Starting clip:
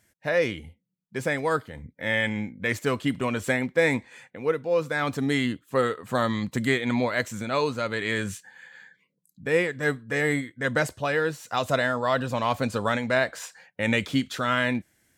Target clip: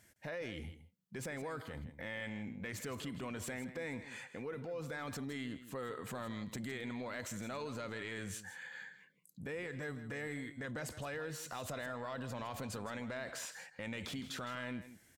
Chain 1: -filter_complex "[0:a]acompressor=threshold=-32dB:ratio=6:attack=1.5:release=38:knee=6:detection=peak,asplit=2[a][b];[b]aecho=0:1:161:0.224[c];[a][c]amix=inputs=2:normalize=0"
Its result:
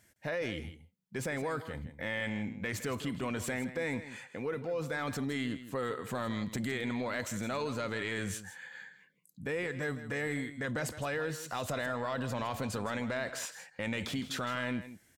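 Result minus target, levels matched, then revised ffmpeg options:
compressor: peak gain reduction -7.5 dB
-filter_complex "[0:a]acompressor=threshold=-41dB:ratio=6:attack=1.5:release=38:knee=6:detection=peak,asplit=2[a][b];[b]aecho=0:1:161:0.224[c];[a][c]amix=inputs=2:normalize=0"

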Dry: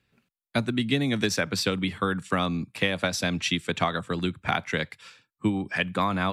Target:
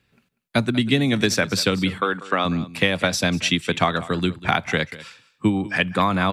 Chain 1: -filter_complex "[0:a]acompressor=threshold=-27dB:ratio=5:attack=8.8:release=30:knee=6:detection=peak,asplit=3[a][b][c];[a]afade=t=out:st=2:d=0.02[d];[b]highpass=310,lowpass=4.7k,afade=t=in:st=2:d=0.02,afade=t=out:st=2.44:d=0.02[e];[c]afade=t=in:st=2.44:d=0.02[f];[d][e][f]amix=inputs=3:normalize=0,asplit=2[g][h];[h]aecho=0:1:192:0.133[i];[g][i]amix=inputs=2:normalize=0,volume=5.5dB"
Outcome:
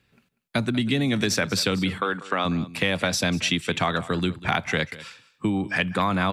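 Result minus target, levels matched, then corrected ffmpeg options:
compressor: peak gain reduction +7 dB
-filter_complex "[0:a]asplit=3[a][b][c];[a]afade=t=out:st=2:d=0.02[d];[b]highpass=310,lowpass=4.7k,afade=t=in:st=2:d=0.02,afade=t=out:st=2.44:d=0.02[e];[c]afade=t=in:st=2.44:d=0.02[f];[d][e][f]amix=inputs=3:normalize=0,asplit=2[g][h];[h]aecho=0:1:192:0.133[i];[g][i]amix=inputs=2:normalize=0,volume=5.5dB"

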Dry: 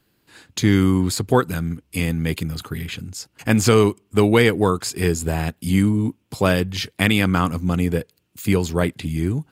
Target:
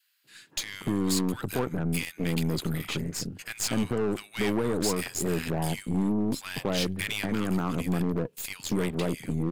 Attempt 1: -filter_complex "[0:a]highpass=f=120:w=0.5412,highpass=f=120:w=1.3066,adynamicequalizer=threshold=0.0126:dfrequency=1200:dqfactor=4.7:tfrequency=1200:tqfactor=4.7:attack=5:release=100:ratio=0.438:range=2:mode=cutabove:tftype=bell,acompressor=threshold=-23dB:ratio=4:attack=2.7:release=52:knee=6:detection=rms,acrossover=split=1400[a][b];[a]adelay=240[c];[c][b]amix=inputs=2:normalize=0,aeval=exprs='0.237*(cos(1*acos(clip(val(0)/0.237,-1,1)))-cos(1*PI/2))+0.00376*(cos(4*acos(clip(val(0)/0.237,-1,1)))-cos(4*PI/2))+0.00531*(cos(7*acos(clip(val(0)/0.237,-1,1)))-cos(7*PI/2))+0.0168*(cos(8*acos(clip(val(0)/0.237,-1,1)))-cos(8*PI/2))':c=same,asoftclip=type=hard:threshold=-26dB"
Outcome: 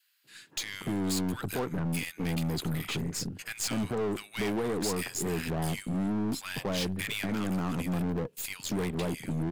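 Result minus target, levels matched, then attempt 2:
hard clip: distortion +10 dB
-filter_complex "[0:a]highpass=f=120:w=0.5412,highpass=f=120:w=1.3066,adynamicequalizer=threshold=0.0126:dfrequency=1200:dqfactor=4.7:tfrequency=1200:tqfactor=4.7:attack=5:release=100:ratio=0.438:range=2:mode=cutabove:tftype=bell,acompressor=threshold=-23dB:ratio=4:attack=2.7:release=52:knee=6:detection=rms,acrossover=split=1400[a][b];[a]adelay=240[c];[c][b]amix=inputs=2:normalize=0,aeval=exprs='0.237*(cos(1*acos(clip(val(0)/0.237,-1,1)))-cos(1*PI/2))+0.00376*(cos(4*acos(clip(val(0)/0.237,-1,1)))-cos(4*PI/2))+0.00531*(cos(7*acos(clip(val(0)/0.237,-1,1)))-cos(7*PI/2))+0.0168*(cos(8*acos(clip(val(0)/0.237,-1,1)))-cos(8*PI/2))':c=same,asoftclip=type=hard:threshold=-19.5dB"

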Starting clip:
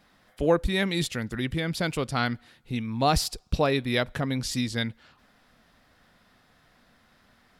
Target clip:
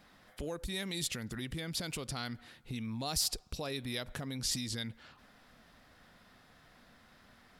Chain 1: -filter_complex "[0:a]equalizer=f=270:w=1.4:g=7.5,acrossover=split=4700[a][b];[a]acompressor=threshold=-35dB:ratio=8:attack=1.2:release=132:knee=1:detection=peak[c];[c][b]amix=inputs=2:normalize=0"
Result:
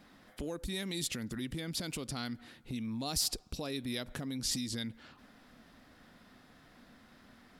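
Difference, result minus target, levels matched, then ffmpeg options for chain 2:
250 Hz band +2.5 dB
-filter_complex "[0:a]acrossover=split=4700[a][b];[a]acompressor=threshold=-35dB:ratio=8:attack=1.2:release=132:knee=1:detection=peak[c];[c][b]amix=inputs=2:normalize=0"

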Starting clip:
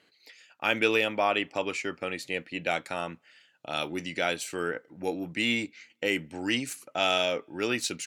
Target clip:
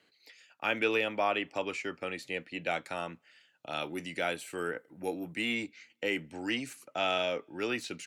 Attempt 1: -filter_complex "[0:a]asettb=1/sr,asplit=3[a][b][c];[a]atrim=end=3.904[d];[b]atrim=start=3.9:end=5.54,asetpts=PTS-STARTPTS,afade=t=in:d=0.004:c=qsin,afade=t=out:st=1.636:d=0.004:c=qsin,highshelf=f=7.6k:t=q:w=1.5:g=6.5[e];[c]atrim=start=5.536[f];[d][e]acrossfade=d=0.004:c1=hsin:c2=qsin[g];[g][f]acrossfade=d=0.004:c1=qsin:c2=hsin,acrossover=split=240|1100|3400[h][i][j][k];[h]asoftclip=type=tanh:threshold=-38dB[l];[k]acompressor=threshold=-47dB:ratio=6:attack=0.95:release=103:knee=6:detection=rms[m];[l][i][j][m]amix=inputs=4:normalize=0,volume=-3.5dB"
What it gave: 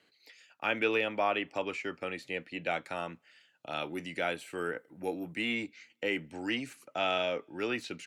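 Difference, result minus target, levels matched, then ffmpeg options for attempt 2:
compressor: peak gain reduction +6.5 dB
-filter_complex "[0:a]asettb=1/sr,asplit=3[a][b][c];[a]atrim=end=3.904[d];[b]atrim=start=3.9:end=5.54,asetpts=PTS-STARTPTS,afade=t=in:d=0.004:c=qsin,afade=t=out:st=1.636:d=0.004:c=qsin,highshelf=f=7.6k:t=q:w=1.5:g=6.5[e];[c]atrim=start=5.536[f];[d][e]acrossfade=d=0.004:c1=hsin:c2=qsin[g];[g][f]acrossfade=d=0.004:c1=qsin:c2=hsin,acrossover=split=240|1100|3400[h][i][j][k];[h]asoftclip=type=tanh:threshold=-38dB[l];[k]acompressor=threshold=-39dB:ratio=6:attack=0.95:release=103:knee=6:detection=rms[m];[l][i][j][m]amix=inputs=4:normalize=0,volume=-3.5dB"

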